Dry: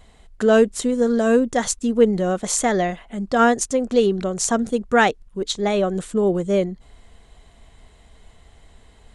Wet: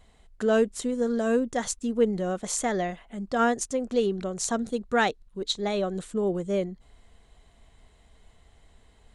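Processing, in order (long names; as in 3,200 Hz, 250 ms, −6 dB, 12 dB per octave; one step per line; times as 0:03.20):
0:04.43–0:06.04: parametric band 4,000 Hz +7.5 dB 0.25 octaves
level −7.5 dB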